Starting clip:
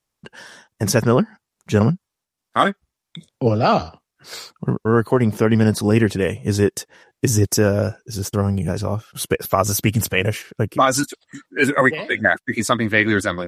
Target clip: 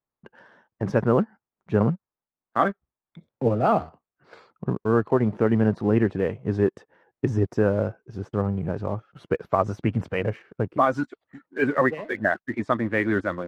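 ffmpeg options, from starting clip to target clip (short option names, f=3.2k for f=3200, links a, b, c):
-filter_complex "[0:a]lowpass=1.4k,lowshelf=f=130:g=-5.5,asplit=2[a][b];[b]aeval=exprs='sgn(val(0))*max(abs(val(0))-0.0141,0)':c=same,volume=-3.5dB[c];[a][c]amix=inputs=2:normalize=0,volume=-7.5dB"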